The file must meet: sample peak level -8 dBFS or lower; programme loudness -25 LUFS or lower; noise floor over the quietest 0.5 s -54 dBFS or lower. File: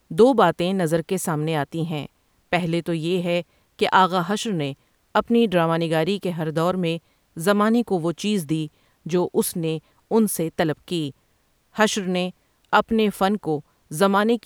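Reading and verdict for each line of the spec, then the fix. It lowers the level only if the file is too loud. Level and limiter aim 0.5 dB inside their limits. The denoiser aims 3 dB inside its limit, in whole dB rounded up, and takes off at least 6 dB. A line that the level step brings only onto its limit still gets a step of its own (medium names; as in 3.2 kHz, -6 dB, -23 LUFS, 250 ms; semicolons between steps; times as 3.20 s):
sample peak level -4.0 dBFS: fail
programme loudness -22.5 LUFS: fail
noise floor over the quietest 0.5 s -64 dBFS: pass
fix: trim -3 dB; peak limiter -8.5 dBFS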